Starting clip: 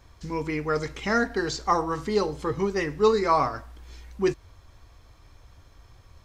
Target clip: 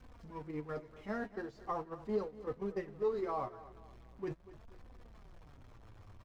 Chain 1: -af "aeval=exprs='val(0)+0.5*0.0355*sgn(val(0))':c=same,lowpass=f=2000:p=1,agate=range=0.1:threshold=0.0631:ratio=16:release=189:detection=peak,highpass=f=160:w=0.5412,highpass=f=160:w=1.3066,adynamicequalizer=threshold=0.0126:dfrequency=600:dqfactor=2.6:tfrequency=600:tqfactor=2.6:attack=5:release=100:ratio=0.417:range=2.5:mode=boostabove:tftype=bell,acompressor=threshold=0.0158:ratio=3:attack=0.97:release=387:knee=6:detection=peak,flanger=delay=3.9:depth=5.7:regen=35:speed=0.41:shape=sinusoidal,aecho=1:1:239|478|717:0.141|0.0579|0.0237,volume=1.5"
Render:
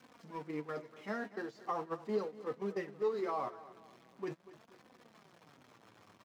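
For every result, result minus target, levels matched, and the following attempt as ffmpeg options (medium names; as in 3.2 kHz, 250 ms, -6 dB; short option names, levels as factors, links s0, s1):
125 Hz band -4.0 dB; 2 kHz band +2.5 dB
-af "aeval=exprs='val(0)+0.5*0.0355*sgn(val(0))':c=same,lowpass=f=2000:p=1,agate=range=0.1:threshold=0.0631:ratio=16:release=189:detection=peak,adynamicequalizer=threshold=0.0126:dfrequency=600:dqfactor=2.6:tfrequency=600:tqfactor=2.6:attack=5:release=100:ratio=0.417:range=2.5:mode=boostabove:tftype=bell,acompressor=threshold=0.0158:ratio=3:attack=0.97:release=387:knee=6:detection=peak,flanger=delay=3.9:depth=5.7:regen=35:speed=0.41:shape=sinusoidal,aecho=1:1:239|478|717:0.141|0.0579|0.0237,volume=1.5"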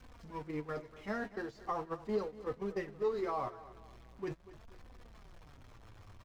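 2 kHz band +2.5 dB
-af "aeval=exprs='val(0)+0.5*0.0355*sgn(val(0))':c=same,lowpass=f=980:p=1,agate=range=0.1:threshold=0.0631:ratio=16:release=189:detection=peak,adynamicequalizer=threshold=0.0126:dfrequency=600:dqfactor=2.6:tfrequency=600:tqfactor=2.6:attack=5:release=100:ratio=0.417:range=2.5:mode=boostabove:tftype=bell,acompressor=threshold=0.0158:ratio=3:attack=0.97:release=387:knee=6:detection=peak,flanger=delay=3.9:depth=5.7:regen=35:speed=0.41:shape=sinusoidal,aecho=1:1:239|478|717:0.141|0.0579|0.0237,volume=1.5"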